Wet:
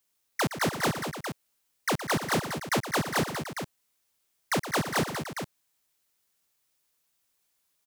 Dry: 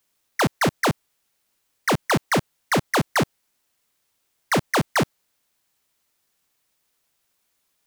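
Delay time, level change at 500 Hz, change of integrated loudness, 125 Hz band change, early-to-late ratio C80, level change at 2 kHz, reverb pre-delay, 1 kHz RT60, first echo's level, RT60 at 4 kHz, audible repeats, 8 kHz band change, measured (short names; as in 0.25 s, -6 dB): 0.117 s, -6.0 dB, -6.5 dB, -6.0 dB, none, -5.5 dB, none, none, -11.5 dB, none, 4, -3.0 dB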